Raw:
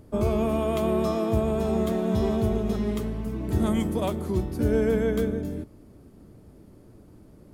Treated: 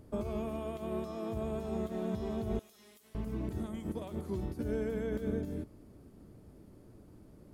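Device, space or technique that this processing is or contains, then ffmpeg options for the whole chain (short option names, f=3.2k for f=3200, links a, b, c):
de-esser from a sidechain: -filter_complex "[0:a]asettb=1/sr,asplit=3[a][b][c];[a]atrim=end=2.594[d];[b]atrim=start=2.59:end=3.15,asetpts=PTS-STARTPTS,afade=t=in:d=0.004:c=qsin,afade=t=out:st=0.556:d=0.004:c=qsin,aderivative[e];[c]atrim=start=3.146[f];[d][e]acrossfade=d=0.004:c1=hsin:c2=qsin[g];[g][f]acrossfade=d=0.004:c1=qsin:c2=hsin,asplit=2[h][i];[i]highpass=4.5k,apad=whole_len=332303[j];[h][j]sidechaincompress=threshold=-56dB:ratio=8:attack=3.1:release=51,volume=-5dB"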